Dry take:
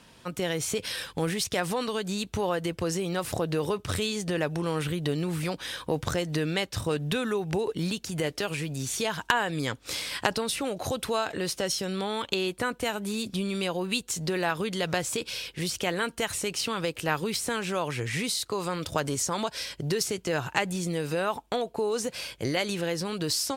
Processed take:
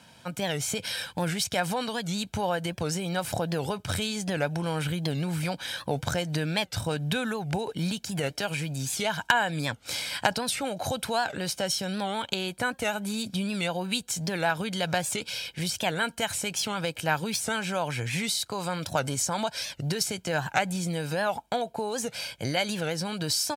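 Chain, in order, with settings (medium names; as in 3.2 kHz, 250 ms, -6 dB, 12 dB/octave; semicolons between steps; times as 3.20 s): high-pass 94 Hz; comb 1.3 ms, depth 54%; warped record 78 rpm, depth 160 cents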